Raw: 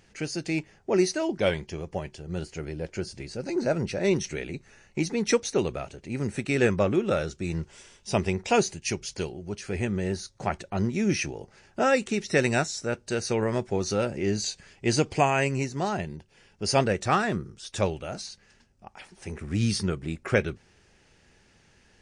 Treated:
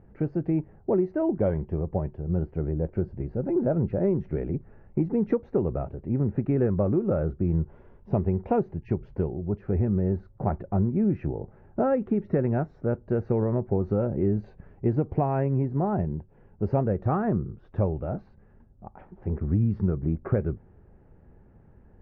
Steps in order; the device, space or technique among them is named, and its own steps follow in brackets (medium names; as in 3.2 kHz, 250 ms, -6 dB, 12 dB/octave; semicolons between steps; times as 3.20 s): Bessel low-pass 790 Hz, order 4; ASMR close-microphone chain (bass shelf 180 Hz +7.5 dB; compression, threshold -24 dBFS, peak gain reduction 8.5 dB; treble shelf 6.1 kHz +7.5 dB); trim +4 dB